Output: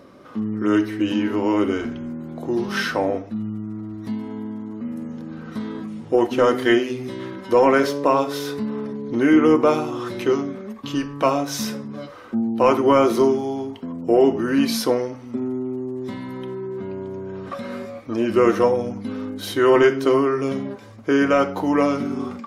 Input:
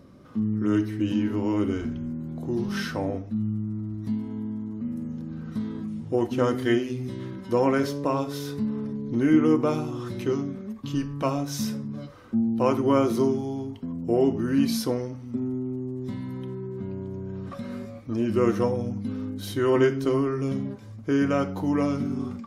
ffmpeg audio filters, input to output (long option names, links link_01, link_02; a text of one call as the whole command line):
ffmpeg -i in.wav -af "bass=frequency=250:gain=-15,treble=frequency=4000:gain=-5,apsyclip=17.5dB,volume=-7.5dB" out.wav